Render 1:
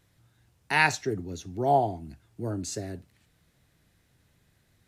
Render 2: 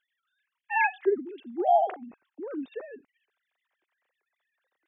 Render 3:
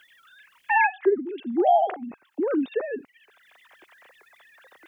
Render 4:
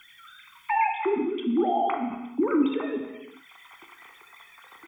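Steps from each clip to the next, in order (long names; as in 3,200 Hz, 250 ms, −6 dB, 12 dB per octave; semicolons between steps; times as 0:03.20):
three sine waves on the formant tracks
multiband upward and downward compressor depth 70%; level +5.5 dB
brickwall limiter −20 dBFS, peak gain reduction 9.5 dB; comb filter 0.9 ms, depth 82%; reverb whose tail is shaped and stops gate 430 ms falling, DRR 3 dB; level +2 dB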